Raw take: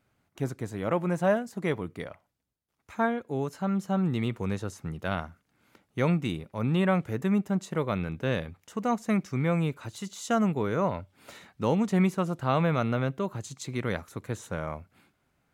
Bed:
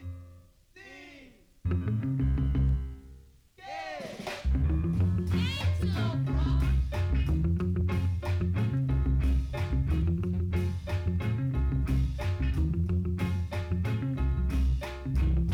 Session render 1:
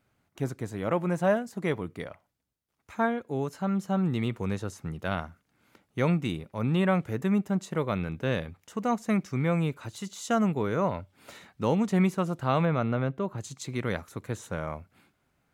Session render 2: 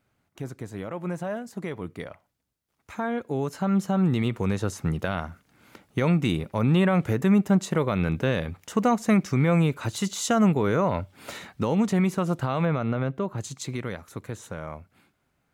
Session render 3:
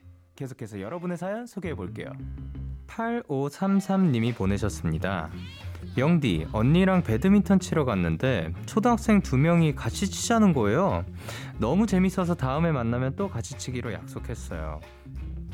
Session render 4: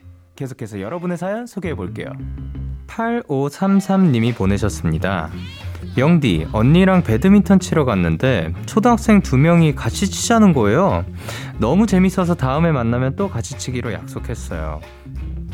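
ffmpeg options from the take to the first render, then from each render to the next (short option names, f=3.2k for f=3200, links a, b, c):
-filter_complex "[0:a]asettb=1/sr,asplit=3[a][b][c];[a]atrim=end=12.654[d];[b]atrim=start=12.65:end=13.38,asetpts=PTS-STARTPTS,afade=t=in:d=0.004:c=qsin,afade=t=out:st=0.726:d=0.004:c=qsin,highshelf=f=3.2k:g=-10.5[e];[c]atrim=start=13.376[f];[d][e]acrossfade=d=0.004:c1=hsin:c2=qsin[g];[g][f]acrossfade=d=0.004:c1=qsin:c2=hsin"
-af "alimiter=limit=-23dB:level=0:latency=1:release=153,dynaudnorm=f=780:g=9:m=10dB"
-filter_complex "[1:a]volume=-10dB[a];[0:a][a]amix=inputs=2:normalize=0"
-af "volume=8.5dB"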